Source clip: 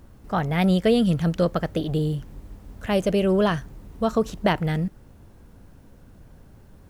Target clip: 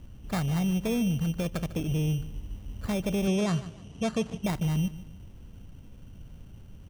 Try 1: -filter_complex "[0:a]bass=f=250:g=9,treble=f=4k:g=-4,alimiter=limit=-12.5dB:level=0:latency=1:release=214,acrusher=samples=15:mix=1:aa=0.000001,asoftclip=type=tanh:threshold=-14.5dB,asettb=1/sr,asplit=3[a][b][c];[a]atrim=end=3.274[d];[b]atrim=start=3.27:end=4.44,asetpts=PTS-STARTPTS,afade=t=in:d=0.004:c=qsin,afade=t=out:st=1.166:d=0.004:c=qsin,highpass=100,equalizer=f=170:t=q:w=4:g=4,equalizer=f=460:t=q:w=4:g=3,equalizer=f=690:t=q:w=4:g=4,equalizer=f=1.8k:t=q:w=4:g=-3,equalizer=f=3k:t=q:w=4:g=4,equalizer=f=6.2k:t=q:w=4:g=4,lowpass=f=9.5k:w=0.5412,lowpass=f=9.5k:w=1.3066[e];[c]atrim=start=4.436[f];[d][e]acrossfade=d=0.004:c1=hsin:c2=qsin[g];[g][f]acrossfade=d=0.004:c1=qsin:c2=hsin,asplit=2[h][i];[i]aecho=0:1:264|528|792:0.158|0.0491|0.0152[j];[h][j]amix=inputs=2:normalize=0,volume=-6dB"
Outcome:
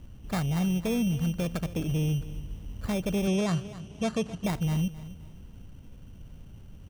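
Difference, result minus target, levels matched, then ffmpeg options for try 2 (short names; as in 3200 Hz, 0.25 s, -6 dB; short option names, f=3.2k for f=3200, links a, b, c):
echo 0.115 s late
-filter_complex "[0:a]bass=f=250:g=9,treble=f=4k:g=-4,alimiter=limit=-12.5dB:level=0:latency=1:release=214,acrusher=samples=15:mix=1:aa=0.000001,asoftclip=type=tanh:threshold=-14.5dB,asettb=1/sr,asplit=3[a][b][c];[a]atrim=end=3.274[d];[b]atrim=start=3.27:end=4.44,asetpts=PTS-STARTPTS,afade=t=in:d=0.004:c=qsin,afade=t=out:st=1.166:d=0.004:c=qsin,highpass=100,equalizer=f=170:t=q:w=4:g=4,equalizer=f=460:t=q:w=4:g=3,equalizer=f=690:t=q:w=4:g=4,equalizer=f=1.8k:t=q:w=4:g=-3,equalizer=f=3k:t=q:w=4:g=4,equalizer=f=6.2k:t=q:w=4:g=4,lowpass=f=9.5k:w=0.5412,lowpass=f=9.5k:w=1.3066[e];[c]atrim=start=4.436[f];[d][e]acrossfade=d=0.004:c1=hsin:c2=qsin[g];[g][f]acrossfade=d=0.004:c1=qsin:c2=hsin,asplit=2[h][i];[i]aecho=0:1:149|298|447:0.158|0.0491|0.0152[j];[h][j]amix=inputs=2:normalize=0,volume=-6dB"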